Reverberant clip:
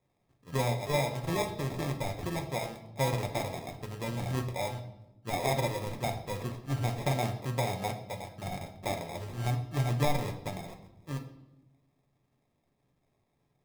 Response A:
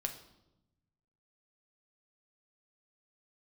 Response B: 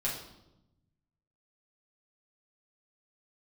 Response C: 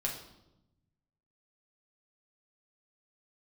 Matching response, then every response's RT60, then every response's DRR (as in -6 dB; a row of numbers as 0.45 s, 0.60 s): A; 0.90 s, 0.90 s, 0.90 s; 4.0 dB, -6.5 dB, -2.0 dB